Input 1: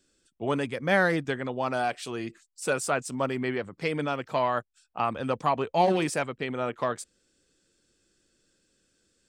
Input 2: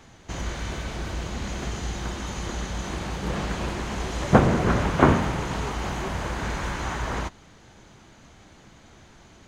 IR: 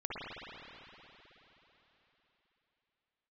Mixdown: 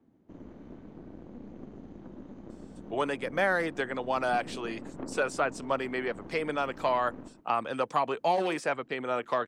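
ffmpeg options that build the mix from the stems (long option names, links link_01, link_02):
-filter_complex "[0:a]highpass=frequency=420:poles=1,adelay=2500,volume=2dB[link_01];[1:a]bandpass=frequency=270:width_type=q:width=2.8:csg=0,acompressor=threshold=-36dB:ratio=3,aeval=exprs='0.0891*(cos(1*acos(clip(val(0)/0.0891,-1,1)))-cos(1*PI/2))+0.00316*(cos(7*acos(clip(val(0)/0.0891,-1,1)))-cos(7*PI/2))+0.00708*(cos(8*acos(clip(val(0)/0.0891,-1,1)))-cos(8*PI/2))':channel_layout=same,volume=-2.5dB,asplit=2[link_02][link_03];[link_03]volume=-10dB,aecho=0:1:124:1[link_04];[link_01][link_02][link_04]amix=inputs=3:normalize=0,acrossover=split=330|2100|6400[link_05][link_06][link_07][link_08];[link_05]acompressor=threshold=-39dB:ratio=4[link_09];[link_06]acompressor=threshold=-23dB:ratio=4[link_10];[link_07]acompressor=threshold=-43dB:ratio=4[link_11];[link_08]acompressor=threshold=-57dB:ratio=4[link_12];[link_09][link_10][link_11][link_12]amix=inputs=4:normalize=0"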